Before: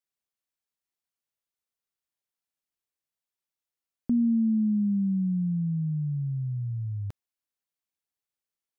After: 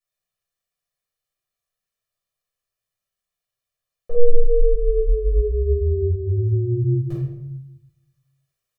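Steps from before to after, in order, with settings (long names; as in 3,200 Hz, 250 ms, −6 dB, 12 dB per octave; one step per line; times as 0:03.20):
in parallel at −0.5 dB: brickwall limiter −28.5 dBFS, peak gain reduction 9.5 dB
on the sum: ring modulation 240 Hz
comb filter 1.7 ms, depth 86%
rectangular room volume 210 cubic metres, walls mixed, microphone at 4 metres
speech leveller 0.5 s
level −9.5 dB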